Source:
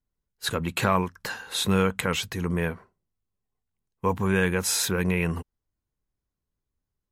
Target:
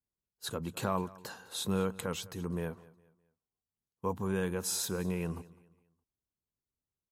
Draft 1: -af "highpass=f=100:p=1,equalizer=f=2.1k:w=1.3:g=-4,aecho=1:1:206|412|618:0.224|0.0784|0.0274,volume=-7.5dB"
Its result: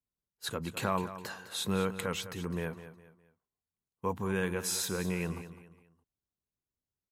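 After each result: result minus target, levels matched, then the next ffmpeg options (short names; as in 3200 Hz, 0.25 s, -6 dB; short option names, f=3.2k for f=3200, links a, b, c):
echo-to-direct +8 dB; 2000 Hz band +4.5 dB
-af "highpass=f=100:p=1,equalizer=f=2.1k:w=1.3:g=-4,aecho=1:1:206|412|618:0.0891|0.0312|0.0109,volume=-7.5dB"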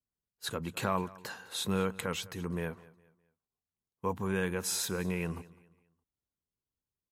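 2000 Hz band +4.5 dB
-af "highpass=f=100:p=1,equalizer=f=2.1k:w=1.3:g=-11.5,aecho=1:1:206|412|618:0.0891|0.0312|0.0109,volume=-7.5dB"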